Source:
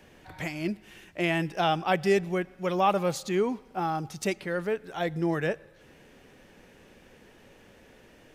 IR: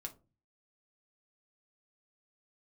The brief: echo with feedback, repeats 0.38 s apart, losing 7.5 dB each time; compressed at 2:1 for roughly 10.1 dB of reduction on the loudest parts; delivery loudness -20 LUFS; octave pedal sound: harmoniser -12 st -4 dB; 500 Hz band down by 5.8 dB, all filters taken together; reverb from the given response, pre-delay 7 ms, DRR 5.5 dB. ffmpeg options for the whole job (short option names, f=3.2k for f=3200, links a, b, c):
-filter_complex "[0:a]equalizer=f=500:t=o:g=-8,acompressor=threshold=-41dB:ratio=2,aecho=1:1:380|760|1140|1520|1900:0.422|0.177|0.0744|0.0312|0.0131,asplit=2[a][b];[1:a]atrim=start_sample=2205,adelay=7[c];[b][c]afir=irnorm=-1:irlink=0,volume=-2dB[d];[a][d]amix=inputs=2:normalize=0,asplit=2[e][f];[f]asetrate=22050,aresample=44100,atempo=2,volume=-4dB[g];[e][g]amix=inputs=2:normalize=0,volume=17dB"